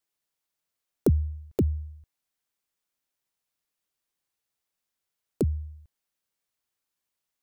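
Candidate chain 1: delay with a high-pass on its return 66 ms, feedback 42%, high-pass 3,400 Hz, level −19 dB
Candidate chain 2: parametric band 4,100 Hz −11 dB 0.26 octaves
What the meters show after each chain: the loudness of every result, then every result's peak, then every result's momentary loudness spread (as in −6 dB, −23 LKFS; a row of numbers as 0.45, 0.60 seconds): −29.0, −29.0 LKFS; −11.5, −11.5 dBFS; 14, 14 LU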